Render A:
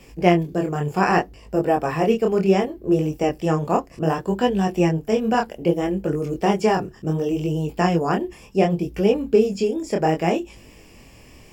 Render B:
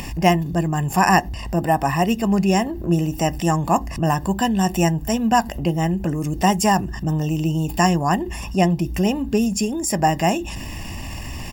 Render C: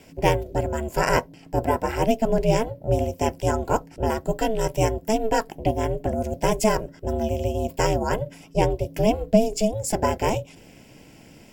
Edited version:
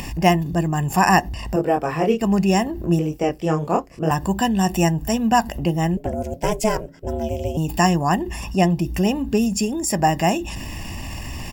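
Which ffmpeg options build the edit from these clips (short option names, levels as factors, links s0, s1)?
-filter_complex "[0:a]asplit=2[s0][s1];[1:a]asplit=4[s2][s3][s4][s5];[s2]atrim=end=1.562[s6];[s0]atrim=start=1.558:end=2.212[s7];[s3]atrim=start=2.208:end=2.992[s8];[s1]atrim=start=2.988:end=4.112[s9];[s4]atrim=start=4.108:end=5.972[s10];[2:a]atrim=start=5.968:end=7.572[s11];[s5]atrim=start=7.568[s12];[s6][s7]acrossfade=d=0.004:c1=hsin:c2=hsin[s13];[s13][s8]acrossfade=d=0.004:c1=hsin:c2=hsin[s14];[s14][s9]acrossfade=d=0.004:c1=hsin:c2=hsin[s15];[s15][s10]acrossfade=d=0.004:c1=hsin:c2=hsin[s16];[s16][s11]acrossfade=d=0.004:c1=hsin:c2=hsin[s17];[s17][s12]acrossfade=d=0.004:c1=hsin:c2=hsin"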